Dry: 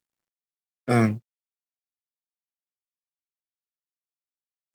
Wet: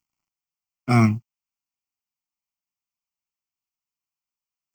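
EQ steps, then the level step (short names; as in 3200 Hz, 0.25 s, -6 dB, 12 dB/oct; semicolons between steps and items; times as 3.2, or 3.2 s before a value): fixed phaser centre 2500 Hz, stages 8; +6.0 dB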